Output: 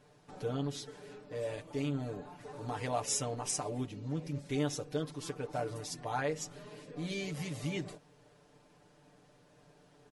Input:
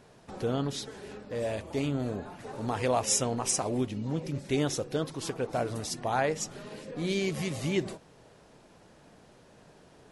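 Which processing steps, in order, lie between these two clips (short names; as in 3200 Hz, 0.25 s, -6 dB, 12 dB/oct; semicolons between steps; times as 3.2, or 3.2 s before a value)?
comb 6.8 ms, depth 89%; gain -9 dB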